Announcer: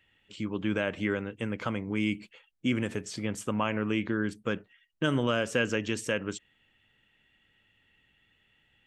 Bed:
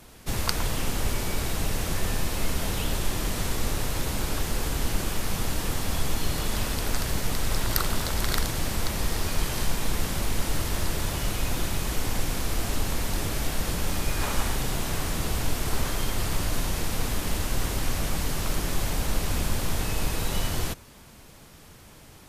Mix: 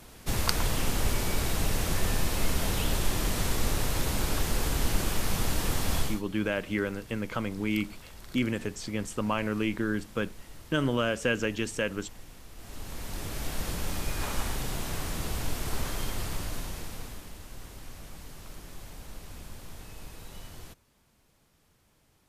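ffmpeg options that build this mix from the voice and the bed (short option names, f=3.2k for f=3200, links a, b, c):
-filter_complex "[0:a]adelay=5700,volume=0dB[a];[1:a]volume=15.5dB,afade=t=out:st=5.98:d=0.24:silence=0.0944061,afade=t=in:st=12.55:d=1.05:silence=0.158489,afade=t=out:st=16.05:d=1.27:silence=0.237137[b];[a][b]amix=inputs=2:normalize=0"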